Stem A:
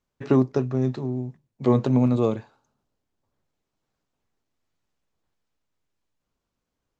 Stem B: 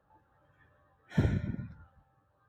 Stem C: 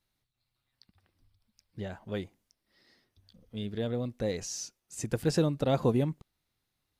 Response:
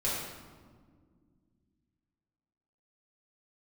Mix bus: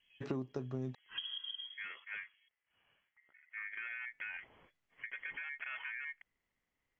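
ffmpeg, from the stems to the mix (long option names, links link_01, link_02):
-filter_complex "[0:a]volume=-8dB,asplit=3[link_01][link_02][link_03];[link_01]atrim=end=0.95,asetpts=PTS-STARTPTS,afade=type=out:start_time=0.946:duration=0.004:curve=hsin[link_04];[link_02]atrim=start=0.95:end=3.69,asetpts=PTS-STARTPTS,volume=0[link_05];[link_03]atrim=start=3.69,asetpts=PTS-STARTPTS,afade=type=in:duration=0.004:curve=hsin[link_06];[link_04][link_05][link_06]concat=n=3:v=0:a=1[link_07];[1:a]equalizer=frequency=290:width=0.93:gain=6,volume=-4.5dB[link_08];[2:a]aeval=exprs='val(0)*sin(2*PI*1400*n/s)':channel_layout=same,alimiter=level_in=3.5dB:limit=-24dB:level=0:latency=1:release=20,volume=-3.5dB,volume=-3.5dB[link_09];[link_08][link_09]amix=inputs=2:normalize=0,lowpass=frequency=2900:width_type=q:width=0.5098,lowpass=frequency=2900:width_type=q:width=0.6013,lowpass=frequency=2900:width_type=q:width=0.9,lowpass=frequency=2900:width_type=q:width=2.563,afreqshift=-3400,acompressor=threshold=-39dB:ratio=6,volume=0dB[link_10];[link_07][link_10]amix=inputs=2:normalize=0,acompressor=threshold=-36dB:ratio=6"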